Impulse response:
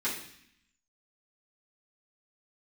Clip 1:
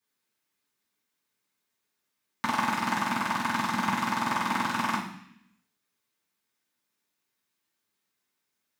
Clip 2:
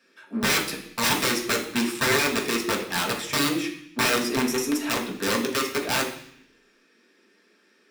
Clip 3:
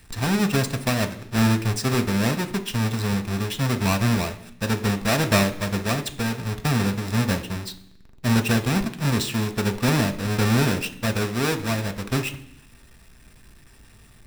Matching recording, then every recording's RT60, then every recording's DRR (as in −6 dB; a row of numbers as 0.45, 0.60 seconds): 1; 0.65, 0.65, 0.65 seconds; −10.5, −2.0, 6.0 decibels